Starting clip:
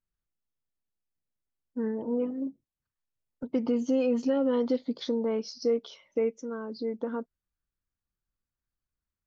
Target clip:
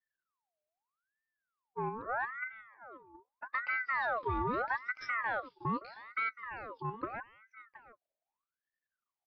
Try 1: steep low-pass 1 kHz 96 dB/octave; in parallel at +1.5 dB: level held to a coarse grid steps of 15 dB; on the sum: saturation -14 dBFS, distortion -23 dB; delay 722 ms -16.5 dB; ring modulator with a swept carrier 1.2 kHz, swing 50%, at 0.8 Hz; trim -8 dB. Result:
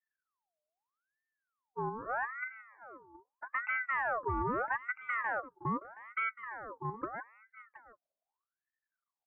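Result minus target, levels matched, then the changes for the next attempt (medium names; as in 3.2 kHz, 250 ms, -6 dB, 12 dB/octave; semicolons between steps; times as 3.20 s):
4 kHz band -9.5 dB
change: steep low-pass 3.8 kHz 96 dB/octave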